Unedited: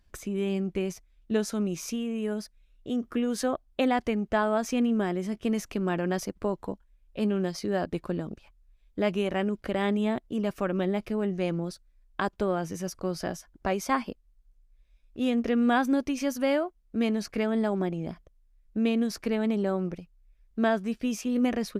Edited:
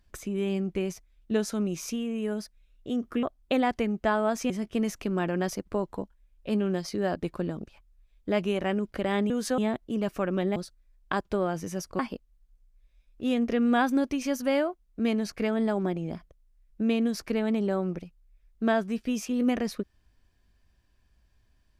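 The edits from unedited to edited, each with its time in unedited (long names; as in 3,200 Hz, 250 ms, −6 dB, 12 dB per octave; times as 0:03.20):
0:03.23–0:03.51: move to 0:10.00
0:04.78–0:05.20: remove
0:10.98–0:11.64: remove
0:13.07–0:13.95: remove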